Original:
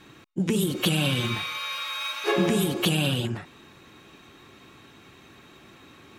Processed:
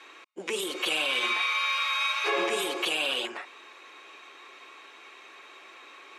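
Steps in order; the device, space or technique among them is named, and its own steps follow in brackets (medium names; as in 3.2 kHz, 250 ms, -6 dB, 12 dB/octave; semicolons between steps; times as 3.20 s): laptop speaker (high-pass 420 Hz 24 dB/octave; peaking EQ 1.1 kHz +5 dB 0.34 oct; peaking EQ 2.3 kHz +6.5 dB 0.53 oct; peak limiter -18.5 dBFS, peak gain reduction 10 dB); low-pass 8.8 kHz 12 dB/octave; trim +1 dB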